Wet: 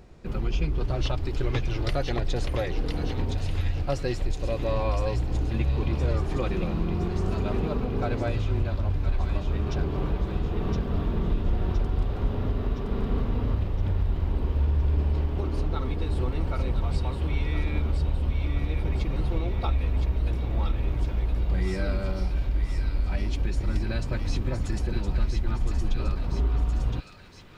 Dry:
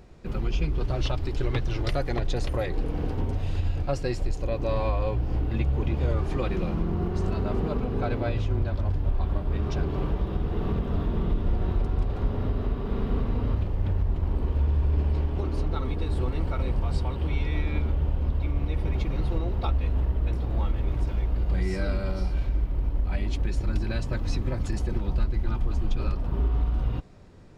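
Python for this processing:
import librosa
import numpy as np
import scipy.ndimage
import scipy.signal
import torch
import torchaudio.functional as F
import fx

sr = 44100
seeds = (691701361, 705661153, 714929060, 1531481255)

y = fx.echo_wet_highpass(x, sr, ms=1016, feedback_pct=58, hz=1900.0, wet_db=-4)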